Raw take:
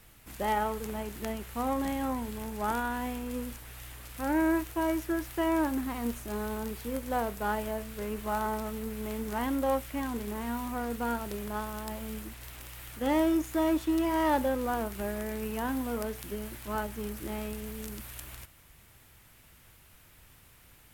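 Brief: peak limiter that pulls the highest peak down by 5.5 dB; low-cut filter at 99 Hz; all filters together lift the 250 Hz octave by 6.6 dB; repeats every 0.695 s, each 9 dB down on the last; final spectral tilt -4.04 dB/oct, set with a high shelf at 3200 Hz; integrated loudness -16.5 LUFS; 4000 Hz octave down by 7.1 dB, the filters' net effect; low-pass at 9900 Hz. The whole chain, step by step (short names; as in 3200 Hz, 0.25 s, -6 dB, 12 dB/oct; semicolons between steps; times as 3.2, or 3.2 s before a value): HPF 99 Hz; LPF 9900 Hz; bell 250 Hz +8.5 dB; high shelf 3200 Hz -3.5 dB; bell 4000 Hz -7.5 dB; limiter -20 dBFS; feedback echo 0.695 s, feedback 35%, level -9 dB; gain +13 dB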